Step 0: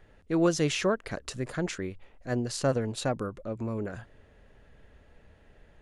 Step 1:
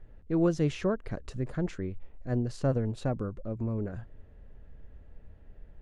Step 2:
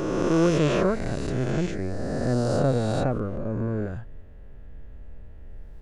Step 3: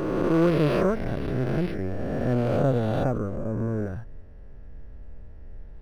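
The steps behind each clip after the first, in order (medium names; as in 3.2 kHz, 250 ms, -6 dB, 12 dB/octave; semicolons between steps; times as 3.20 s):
tilt EQ -3 dB/octave; trim -6 dB
reverse spectral sustain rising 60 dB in 2.58 s; trim +3 dB
decimation joined by straight lines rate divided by 6×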